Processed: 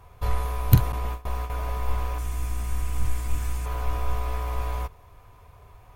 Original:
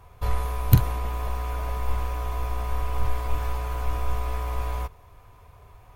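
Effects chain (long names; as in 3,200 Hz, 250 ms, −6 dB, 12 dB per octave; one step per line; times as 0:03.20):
0:00.92–0:01.50: noise gate with hold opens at −20 dBFS
0:02.18–0:03.66: octave-band graphic EQ 250/500/1,000/4,000/8,000 Hz +5/−11/−7/−4/+11 dB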